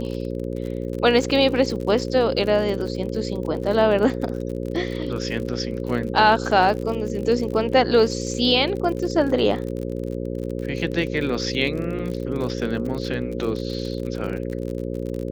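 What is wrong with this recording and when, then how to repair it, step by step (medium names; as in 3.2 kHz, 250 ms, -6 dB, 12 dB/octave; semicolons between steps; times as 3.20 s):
buzz 60 Hz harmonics 9 -28 dBFS
crackle 51 per s -29 dBFS
11.99 s: dropout 3.8 ms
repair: de-click; de-hum 60 Hz, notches 9; interpolate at 11.99 s, 3.8 ms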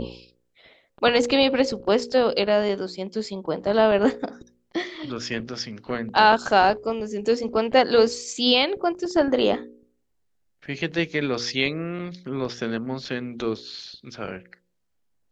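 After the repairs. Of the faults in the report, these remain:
nothing left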